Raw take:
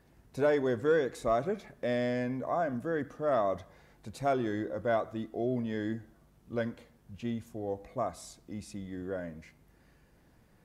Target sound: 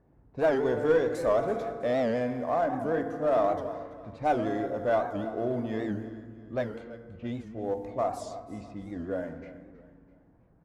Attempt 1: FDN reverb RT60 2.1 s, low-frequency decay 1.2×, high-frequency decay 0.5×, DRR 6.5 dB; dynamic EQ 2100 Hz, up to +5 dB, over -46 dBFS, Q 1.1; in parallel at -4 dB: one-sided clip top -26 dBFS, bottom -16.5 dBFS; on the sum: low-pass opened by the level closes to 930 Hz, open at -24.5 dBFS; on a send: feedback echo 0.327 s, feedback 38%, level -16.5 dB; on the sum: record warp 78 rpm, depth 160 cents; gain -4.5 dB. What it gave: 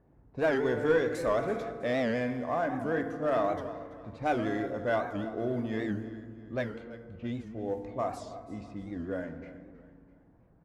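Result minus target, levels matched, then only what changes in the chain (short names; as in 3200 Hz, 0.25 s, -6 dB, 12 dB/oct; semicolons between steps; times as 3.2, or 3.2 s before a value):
2000 Hz band +5.0 dB
change: dynamic EQ 700 Hz, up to +5 dB, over -46 dBFS, Q 1.1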